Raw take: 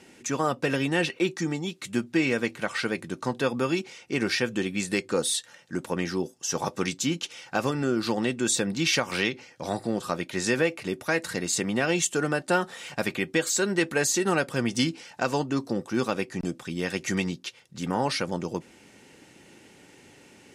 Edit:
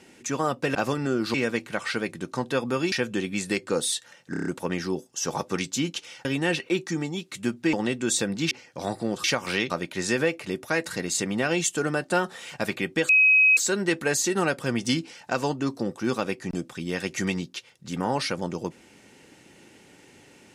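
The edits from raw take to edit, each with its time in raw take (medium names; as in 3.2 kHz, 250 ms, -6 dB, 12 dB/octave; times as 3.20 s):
0.75–2.23 s: swap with 7.52–8.11 s
3.81–4.34 s: delete
5.73 s: stutter 0.03 s, 6 plays
8.89–9.35 s: move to 10.08 s
13.47 s: add tone 2.54 kHz -14 dBFS 0.48 s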